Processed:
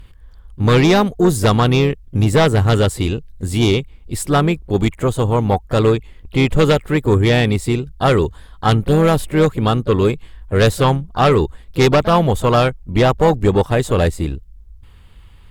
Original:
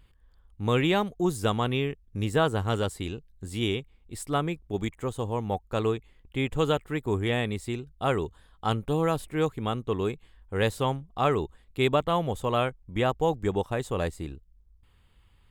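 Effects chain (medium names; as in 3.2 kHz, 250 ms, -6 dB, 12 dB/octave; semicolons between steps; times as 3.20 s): bass shelf 120 Hz +5 dB; sine folder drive 7 dB, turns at -9 dBFS; harmony voices +4 st -14 dB; trim +2.5 dB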